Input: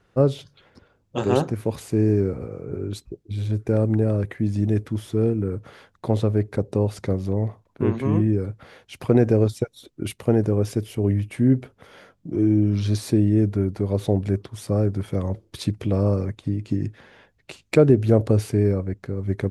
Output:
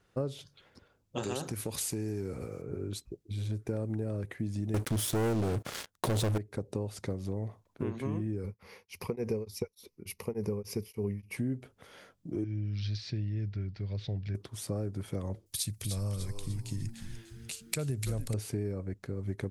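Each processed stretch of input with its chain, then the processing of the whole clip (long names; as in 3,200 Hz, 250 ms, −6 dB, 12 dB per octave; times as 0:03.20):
0:01.23–0:02.62: high-shelf EQ 2,300 Hz +11.5 dB + downward compressor 2.5 to 1, threshold −22 dBFS
0:04.74–0:06.38: high-shelf EQ 5,000 Hz +7 dB + leveller curve on the samples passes 5
0:08.43–0:11.37: EQ curve with evenly spaced ripples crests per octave 0.84, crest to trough 11 dB + tremolo along a rectified sine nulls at 3.4 Hz
0:12.44–0:14.35: Chebyshev low-pass filter 5,100 Hz, order 4 + flat-topped bell 520 Hz −12.5 dB 2.9 octaves
0:15.46–0:18.34: drawn EQ curve 130 Hz 0 dB, 320 Hz −13 dB, 3,000 Hz +1 dB, 11,000 Hz +14 dB + echo with shifted repeats 297 ms, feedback 44%, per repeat −110 Hz, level −7.5 dB
whole clip: high-shelf EQ 4,100 Hz +8.5 dB; downward compressor 4 to 1, threshold −23 dBFS; level −7.5 dB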